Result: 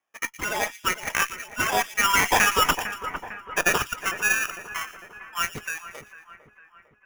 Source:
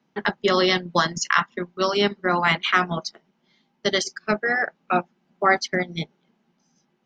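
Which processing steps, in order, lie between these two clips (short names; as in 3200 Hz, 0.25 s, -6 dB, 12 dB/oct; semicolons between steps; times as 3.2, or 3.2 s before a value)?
moving spectral ripple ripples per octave 1.9, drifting +1.5 Hz, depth 16 dB; Doppler pass-by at 2.74, 41 m/s, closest 2.7 m; steep high-pass 1100 Hz 36 dB/oct; compressor, threshold -36 dBFS, peak gain reduction 11.5 dB; tube stage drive 34 dB, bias 0.45; sample-rate reducer 4200 Hz, jitter 0%; split-band echo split 2300 Hz, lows 0.452 s, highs 0.116 s, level -14 dB; maximiser +35 dB; gain -9 dB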